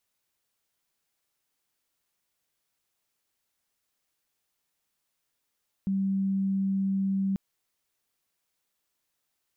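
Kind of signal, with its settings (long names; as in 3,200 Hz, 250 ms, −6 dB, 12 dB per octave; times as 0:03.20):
tone sine 194 Hz −24 dBFS 1.49 s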